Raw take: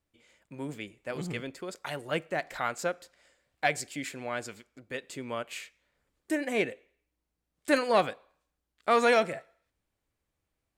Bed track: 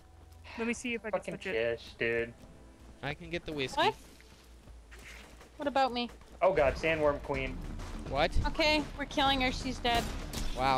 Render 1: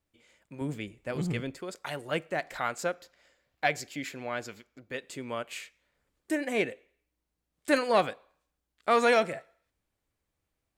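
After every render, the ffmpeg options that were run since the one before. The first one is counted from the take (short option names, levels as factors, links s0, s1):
-filter_complex "[0:a]asettb=1/sr,asplit=3[s0][s1][s2];[s0]atrim=end=0.614[s3];[s1]atrim=start=0.61:end=1.58,asetpts=PTS-STARTPTS,afade=t=in:d=0.004:c=qsin,afade=t=out:st=0.966:d=0.004:c=qsin,lowshelf=f=210:g=9.5[s4];[s2]atrim=start=1.576[s5];[s3][s4]acrossfade=d=0.004:c1=hsin:c2=qsin[s6];[s6][s5]acrossfade=d=0.004:c1=qsin:c2=hsin,asettb=1/sr,asplit=3[s7][s8][s9];[s7]atrim=end=2.944[s10];[s8]atrim=start=2.94:end=4.97,asetpts=PTS-STARTPTS,afade=t=in:d=0.004:c=qsin,afade=t=out:st=2.026:d=0.004:c=qsin,equalizer=f=8700:w=4.3:g=-13.5[s11];[s9]atrim=start=4.966[s12];[s10][s11]acrossfade=d=0.004:c1=hsin:c2=qsin[s13];[s13][s12]acrossfade=d=0.004:c1=qsin:c2=hsin"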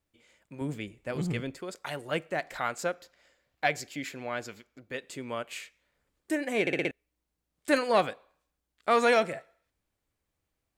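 -filter_complex "[0:a]asplit=6[s0][s1][s2][s3][s4][s5];[s0]atrim=end=6.672[s6];[s1]atrim=start=6.608:end=6.672[s7];[s2]atrim=start=6.608:end=6.672[s8];[s3]atrim=start=6.608:end=6.672[s9];[s4]atrim=start=6.608:end=6.672[s10];[s5]atrim=start=6.908[s11];[s6][s7]acrossfade=d=0.004:c1=hsin:c2=hsin[s12];[s12][s8]acrossfade=d=0.004:c1=hsin:c2=hsin[s13];[s13][s9]acrossfade=d=0.004:c1=hsin:c2=hsin[s14];[s14][s10]acrossfade=d=0.004:c1=hsin:c2=hsin[s15];[s15][s11]acrossfade=d=0.004:c1=hsin:c2=hsin"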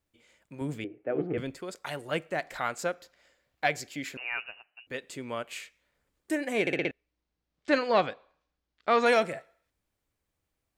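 -filter_complex "[0:a]asettb=1/sr,asplit=3[s0][s1][s2];[s0]atrim=end=0.844[s3];[s1]atrim=start=0.84:end=1.38,asetpts=PTS-STARTPTS,afade=t=in:d=0.004:c=qsin,afade=t=out:st=0.536:d=0.004:c=qsin,highpass=170,equalizer=f=190:t=q:w=4:g=-10,equalizer=f=310:t=q:w=4:g=10,equalizer=f=440:t=q:w=4:g=9,equalizer=f=700:t=q:w=4:g=7,equalizer=f=1000:t=q:w=4:g=-10,equalizer=f=2000:t=q:w=4:g=-4,lowpass=f=2100:w=0.5412,lowpass=f=2100:w=1.3066[s4];[s2]atrim=start=1.376[s5];[s3][s4]acrossfade=d=0.004:c1=hsin:c2=qsin[s6];[s6][s5]acrossfade=d=0.004:c1=qsin:c2=hsin,asettb=1/sr,asplit=3[s7][s8][s9];[s7]atrim=end=4.174[s10];[s8]atrim=start=4.17:end=4.87,asetpts=PTS-STARTPTS,afade=t=in:d=0.004:c=qsin,afade=t=out:st=0.696:d=0.004:c=qsin,lowpass=f=2600:t=q:w=0.5098,lowpass=f=2600:t=q:w=0.6013,lowpass=f=2600:t=q:w=0.9,lowpass=f=2600:t=q:w=2.563,afreqshift=-3000[s11];[s9]atrim=start=4.866[s12];[s10][s11]acrossfade=d=0.004:c1=hsin:c2=qsin[s13];[s13][s12]acrossfade=d=0.004:c1=qsin:c2=hsin,asettb=1/sr,asplit=3[s14][s15][s16];[s14]atrim=end=6.764[s17];[s15]atrim=start=6.76:end=9.06,asetpts=PTS-STARTPTS,afade=t=in:d=0.004:c=qsin,afade=t=out:st=2.296:d=0.004:c=qsin,lowpass=f=5600:w=0.5412,lowpass=f=5600:w=1.3066[s18];[s16]atrim=start=9.056[s19];[s17][s18]acrossfade=d=0.004:c1=hsin:c2=qsin[s20];[s20][s19]acrossfade=d=0.004:c1=qsin:c2=hsin"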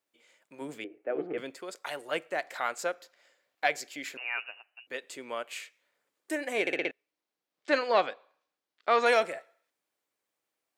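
-af "highpass=380"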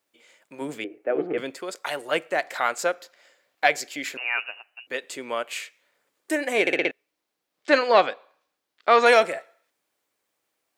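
-af "volume=2.37"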